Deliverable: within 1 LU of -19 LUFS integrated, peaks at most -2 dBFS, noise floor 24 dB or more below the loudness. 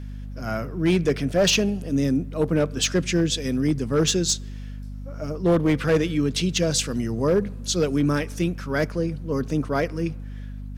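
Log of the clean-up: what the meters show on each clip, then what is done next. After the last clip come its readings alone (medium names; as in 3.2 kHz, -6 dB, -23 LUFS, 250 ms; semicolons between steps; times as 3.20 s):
clipped samples 0.7%; clipping level -13.5 dBFS; hum 50 Hz; highest harmonic 250 Hz; hum level -32 dBFS; loudness -23.5 LUFS; peak level -13.5 dBFS; loudness target -19.0 LUFS
-> clip repair -13.5 dBFS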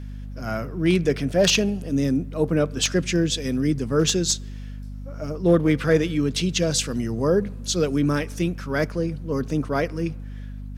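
clipped samples 0.0%; hum 50 Hz; highest harmonic 250 Hz; hum level -32 dBFS
-> hum notches 50/100/150/200/250 Hz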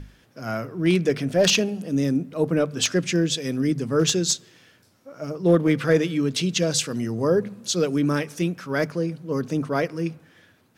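hum not found; loudness -23.0 LUFS; peak level -4.5 dBFS; loudness target -19.0 LUFS
-> trim +4 dB; peak limiter -2 dBFS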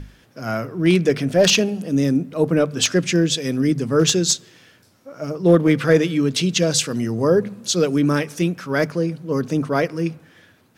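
loudness -19.0 LUFS; peak level -2.0 dBFS; noise floor -55 dBFS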